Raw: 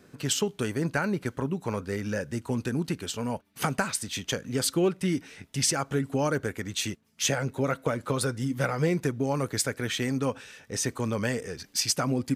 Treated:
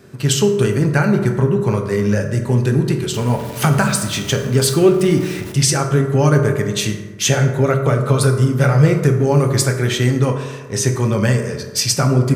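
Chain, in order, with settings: 3.14–5.52 zero-crossing step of -38 dBFS; bell 130 Hz +10 dB 0.5 oct; reverb RT60 1.4 s, pre-delay 3 ms, DRR 3 dB; gain +8 dB

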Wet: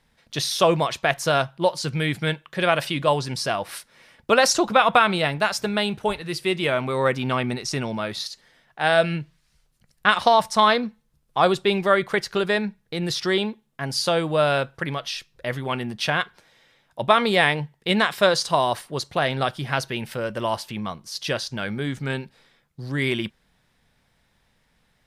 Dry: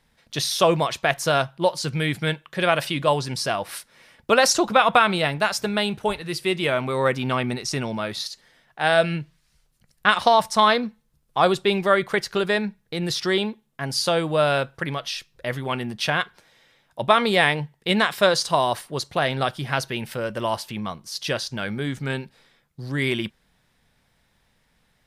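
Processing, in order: high shelf 9300 Hz -3.5 dB

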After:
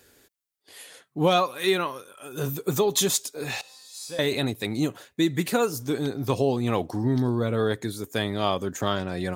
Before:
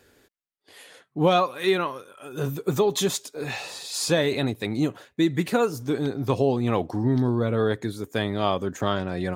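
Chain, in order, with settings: high shelf 4600 Hz +10 dB; 3.61–4.19 resonator 260 Hz, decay 0.78 s, mix 90%; gain -1.5 dB

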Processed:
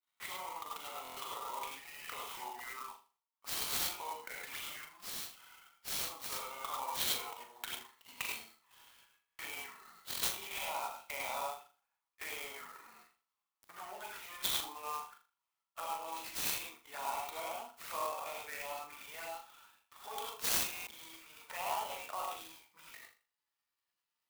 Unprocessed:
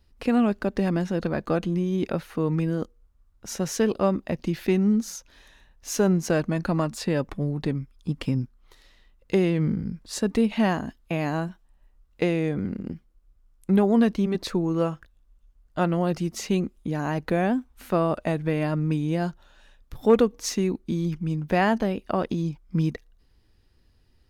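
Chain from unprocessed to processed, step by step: gliding pitch shift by -4.5 st ending unshifted; expander -51 dBFS; limiter -21 dBFS, peak gain reduction 11.5 dB; non-linear reverb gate 0.12 s rising, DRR -2 dB; vocal rider 0.5 s; Chebyshev high-pass 970 Hz, order 3; notch 1600 Hz, Q 9.1; envelope flanger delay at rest 10.2 ms, full sweep at -39.5 dBFS; on a send: flutter echo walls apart 6.9 m, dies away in 0.36 s; on the sum: stuck buffer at 1.03/9.25/10.09/20.73, samples 1024, times 5; clock jitter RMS 0.043 ms; gain +2 dB

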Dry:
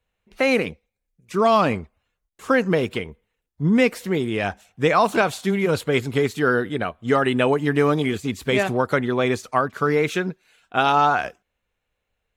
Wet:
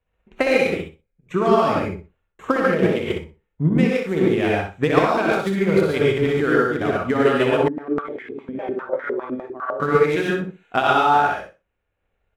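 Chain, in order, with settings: Wiener smoothing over 9 samples; compressor, threshold -19 dBFS, peak gain reduction 7 dB; non-linear reverb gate 0.16 s rising, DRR -3.5 dB; transient shaper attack +6 dB, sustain -3 dB; feedback echo 62 ms, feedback 20%, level -6 dB; 7.68–9.8 stepped band-pass 9.9 Hz 240–1800 Hz; gain -1.5 dB

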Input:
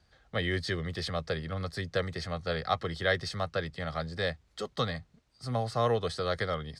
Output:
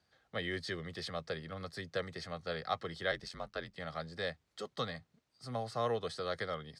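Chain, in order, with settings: Bessel high-pass 150 Hz, order 2; 3.11–3.76 ring modulator 45 Hz; gain -6 dB

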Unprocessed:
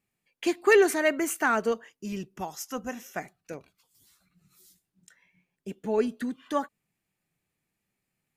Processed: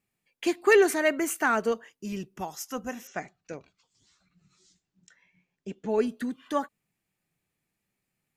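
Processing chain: 3.07–5.89 steep low-pass 7500 Hz 48 dB/oct

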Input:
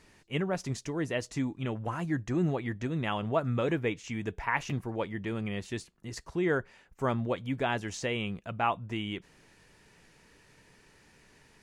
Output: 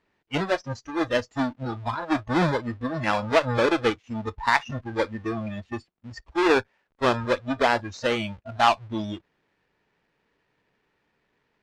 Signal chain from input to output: half-waves squared off; spectral noise reduction 20 dB; added harmonics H 6 -24 dB, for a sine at -13 dBFS; LPF 3300 Hz 12 dB/oct; low shelf 200 Hz -11 dB; gain +7 dB

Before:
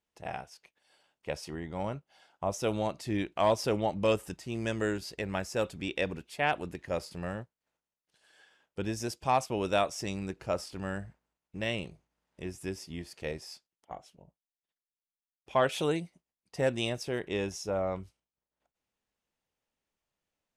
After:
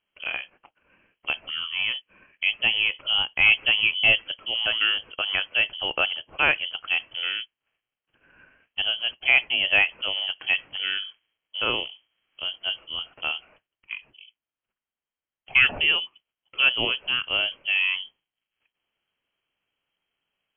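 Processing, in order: inverted band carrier 3200 Hz; gain +7.5 dB

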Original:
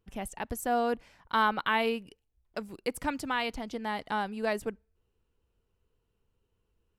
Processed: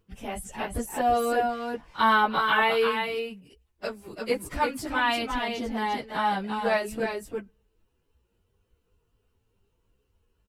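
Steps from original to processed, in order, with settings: on a send: echo 0.229 s -5 dB; on the sum: plain phase-vocoder stretch 1.5×; de-esser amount 90%; gain +7 dB

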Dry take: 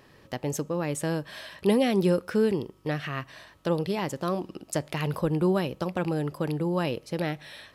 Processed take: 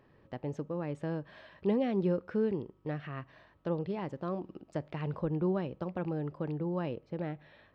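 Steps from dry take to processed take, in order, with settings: tape spacing loss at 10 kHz 34 dB, from 6.92 s at 10 kHz 44 dB; gain -5.5 dB

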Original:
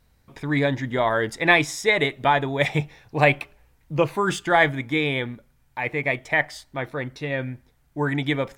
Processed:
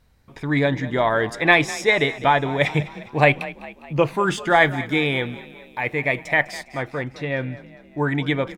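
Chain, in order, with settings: high shelf 7800 Hz -6 dB, from 4.47 s +2 dB, from 6.63 s -11 dB; frequency-shifting echo 0.203 s, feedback 53%, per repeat +32 Hz, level -17 dB; gain +2 dB

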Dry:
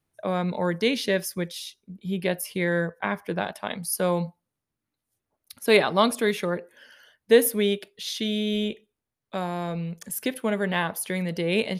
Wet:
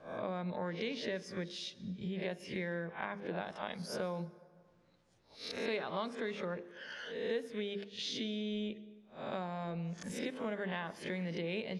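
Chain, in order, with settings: spectral swells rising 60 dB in 0.33 s; LPF 6900 Hz 24 dB/oct; high shelf 4900 Hz -8 dB; notches 50/100/150/200/250/300/350/400/450 Hz; compressor 4:1, threshold -54 dBFS, peak gain reduction 33.5 dB; reverb RT60 2.1 s, pre-delay 0.114 s, DRR 19.5 dB; gain +12 dB

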